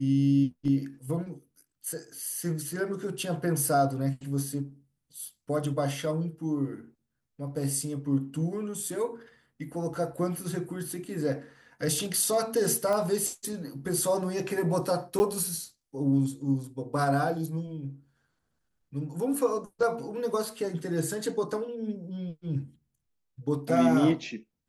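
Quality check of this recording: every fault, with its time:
12.93 s: pop -18 dBFS
15.19–15.20 s: dropout 10 ms

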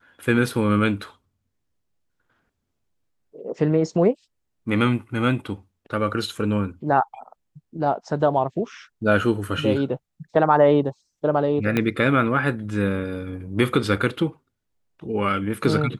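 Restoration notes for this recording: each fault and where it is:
11.77 s: pop -9 dBFS

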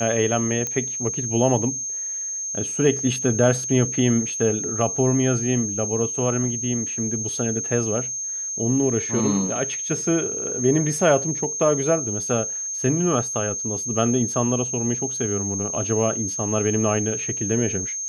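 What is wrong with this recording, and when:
whine 6.4 kHz -26 dBFS
0.67 s: pop -12 dBFS

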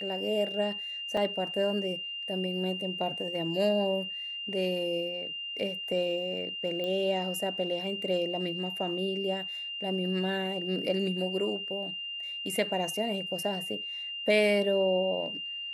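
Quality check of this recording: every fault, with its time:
whine 2.8 kHz -35 dBFS
1.17 s: dropout 3.8 ms
6.84 s: pop -23 dBFS

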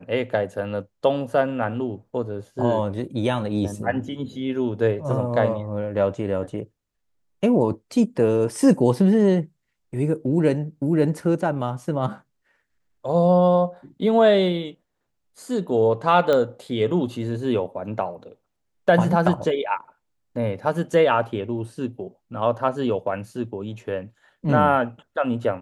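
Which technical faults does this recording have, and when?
16.33 s: pop -11 dBFS

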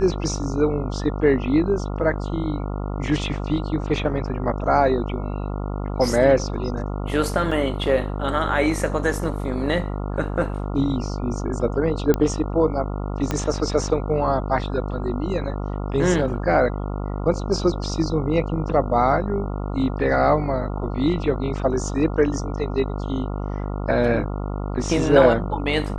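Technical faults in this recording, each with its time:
buzz 50 Hz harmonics 28 -27 dBFS
7.51 s: dropout 4.6 ms
12.14 s: pop -8 dBFS
13.31 s: pop -9 dBFS

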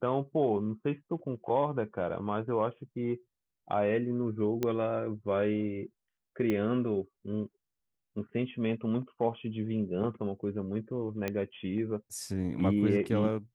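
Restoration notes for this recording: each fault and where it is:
4.63 s: pop -17 dBFS
6.50 s: pop -19 dBFS
11.28 s: pop -18 dBFS

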